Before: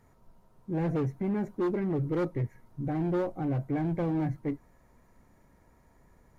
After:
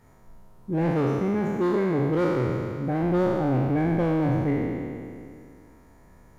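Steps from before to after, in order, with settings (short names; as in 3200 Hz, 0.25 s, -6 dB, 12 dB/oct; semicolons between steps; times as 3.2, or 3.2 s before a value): spectral trails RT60 2.35 s; 0.9–3.03 low shelf 79 Hz -11.5 dB; gain +4 dB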